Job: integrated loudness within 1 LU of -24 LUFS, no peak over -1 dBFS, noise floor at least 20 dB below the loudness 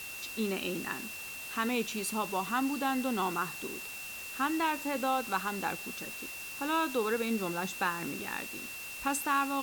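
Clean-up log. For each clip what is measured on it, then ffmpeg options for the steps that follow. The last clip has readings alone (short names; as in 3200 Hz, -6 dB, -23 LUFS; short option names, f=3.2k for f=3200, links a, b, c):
steady tone 2700 Hz; tone level -42 dBFS; noise floor -43 dBFS; noise floor target -53 dBFS; loudness -33.0 LUFS; peak -17.5 dBFS; loudness target -24.0 LUFS
-> -af "bandreject=f=2.7k:w=30"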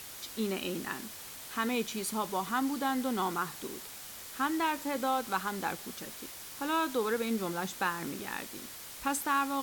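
steady tone none; noise floor -46 dBFS; noise floor target -54 dBFS
-> -af "afftdn=nr=8:nf=-46"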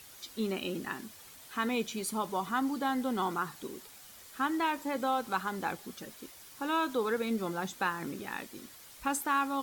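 noise floor -53 dBFS; noise floor target -54 dBFS
-> -af "afftdn=nr=6:nf=-53"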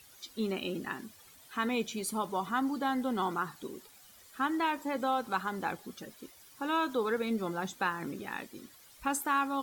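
noise floor -57 dBFS; loudness -33.5 LUFS; peak -18.0 dBFS; loudness target -24.0 LUFS
-> -af "volume=9.5dB"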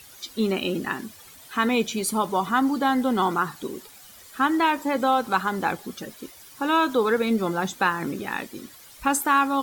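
loudness -24.0 LUFS; peak -8.5 dBFS; noise floor -48 dBFS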